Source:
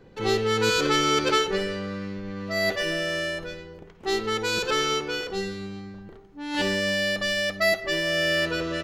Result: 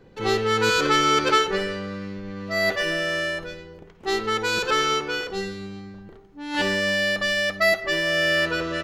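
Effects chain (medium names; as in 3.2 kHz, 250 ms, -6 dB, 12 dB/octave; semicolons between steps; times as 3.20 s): dynamic bell 1.3 kHz, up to +5 dB, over -36 dBFS, Q 0.83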